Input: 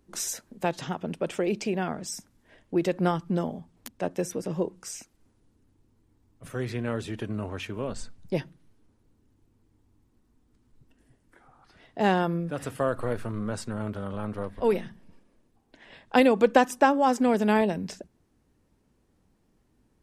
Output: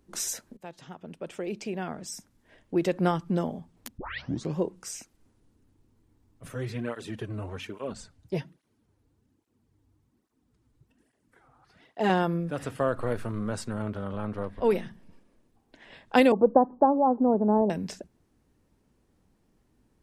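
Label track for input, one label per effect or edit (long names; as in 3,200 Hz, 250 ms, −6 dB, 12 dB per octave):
0.570000	2.930000	fade in linear, from −18 dB
3.980000	3.980000	tape start 0.58 s
6.540000	12.100000	through-zero flanger with one copy inverted nulls at 1.2 Hz, depth 5.7 ms
12.620000	13.070000	high-shelf EQ 9,900 Hz −10.5 dB
13.820000	14.710000	high-shelf EQ 8,500 Hz −11.5 dB
16.320000	17.700000	Butterworth low-pass 1,000 Hz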